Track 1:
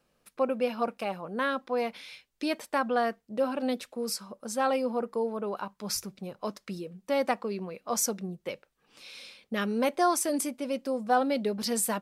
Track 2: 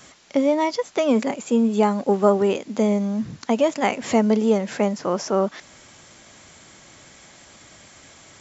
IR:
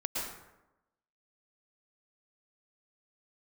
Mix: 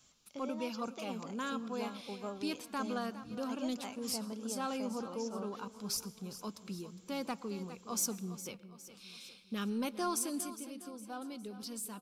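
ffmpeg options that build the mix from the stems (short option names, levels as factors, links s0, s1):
-filter_complex "[0:a]equalizer=f=610:t=o:w=0.93:g=-13,asoftclip=type=tanh:threshold=0.0944,volume=0.631,afade=t=out:st=10.17:d=0.58:silence=0.398107,asplit=3[s0][s1][s2];[s1]volume=0.075[s3];[s2]volume=0.224[s4];[1:a]equalizer=f=440:w=0.4:g=-11.5,volume=0.168[s5];[2:a]atrim=start_sample=2205[s6];[s3][s6]afir=irnorm=-1:irlink=0[s7];[s4]aecho=0:1:410|820|1230|1640|2050|2460:1|0.46|0.212|0.0973|0.0448|0.0206[s8];[s0][s5][s7][s8]amix=inputs=4:normalize=0,equalizer=f=1900:w=2.8:g=-11.5"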